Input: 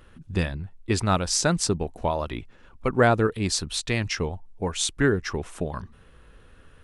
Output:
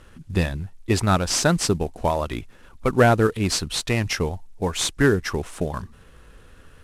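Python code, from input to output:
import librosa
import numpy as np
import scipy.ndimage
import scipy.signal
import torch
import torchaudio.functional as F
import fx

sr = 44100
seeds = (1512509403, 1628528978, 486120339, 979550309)

y = fx.cvsd(x, sr, bps=64000)
y = y * 10.0 ** (3.5 / 20.0)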